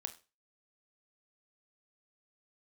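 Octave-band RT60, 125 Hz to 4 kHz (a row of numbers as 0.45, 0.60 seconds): 0.35, 0.30, 0.30, 0.30, 0.30, 0.30 seconds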